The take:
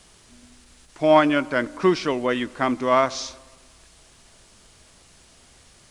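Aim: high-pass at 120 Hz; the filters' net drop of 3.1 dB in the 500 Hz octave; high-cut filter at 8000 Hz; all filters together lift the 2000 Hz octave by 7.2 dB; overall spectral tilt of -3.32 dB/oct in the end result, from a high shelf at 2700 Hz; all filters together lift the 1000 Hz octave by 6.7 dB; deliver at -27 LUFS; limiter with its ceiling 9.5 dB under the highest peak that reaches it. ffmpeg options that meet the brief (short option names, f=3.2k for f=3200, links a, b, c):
-af "highpass=120,lowpass=8k,equalizer=f=500:t=o:g=-8.5,equalizer=f=1k:t=o:g=8,equalizer=f=2k:t=o:g=5,highshelf=f=2.7k:g=4.5,volume=-4.5dB,alimiter=limit=-14dB:level=0:latency=1"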